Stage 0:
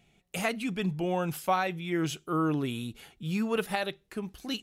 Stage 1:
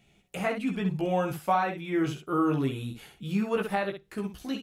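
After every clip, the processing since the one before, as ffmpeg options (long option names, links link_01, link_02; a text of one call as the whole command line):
ffmpeg -i in.wav -filter_complex "[0:a]aecho=1:1:15|66:0.668|0.447,acrossover=split=2200[link_01][link_02];[link_02]acompressor=threshold=-47dB:ratio=6[link_03];[link_01][link_03]amix=inputs=2:normalize=0" out.wav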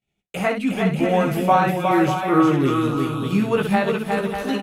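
ffmpeg -i in.wav -filter_complex "[0:a]agate=range=-33dB:threshold=-49dB:ratio=3:detection=peak,asplit=2[link_01][link_02];[link_02]aecho=0:1:360|594|746.1|845|909.2:0.631|0.398|0.251|0.158|0.1[link_03];[link_01][link_03]amix=inputs=2:normalize=0,volume=7.5dB" out.wav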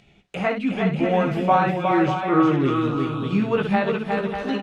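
ffmpeg -i in.wav -af "lowpass=4200,acompressor=mode=upward:threshold=-35dB:ratio=2.5,volume=-1.5dB" out.wav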